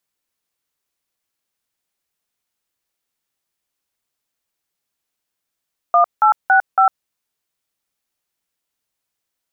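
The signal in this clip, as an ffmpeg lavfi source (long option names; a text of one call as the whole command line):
ffmpeg -f lavfi -i "aevalsrc='0.266*clip(min(mod(t,0.279),0.103-mod(t,0.279))/0.002,0,1)*(eq(floor(t/0.279),0)*(sin(2*PI*697*mod(t,0.279))+sin(2*PI*1209*mod(t,0.279)))+eq(floor(t/0.279),1)*(sin(2*PI*852*mod(t,0.279))+sin(2*PI*1336*mod(t,0.279)))+eq(floor(t/0.279),2)*(sin(2*PI*770*mod(t,0.279))+sin(2*PI*1477*mod(t,0.279)))+eq(floor(t/0.279),3)*(sin(2*PI*770*mod(t,0.279))+sin(2*PI*1336*mod(t,0.279))))':duration=1.116:sample_rate=44100" out.wav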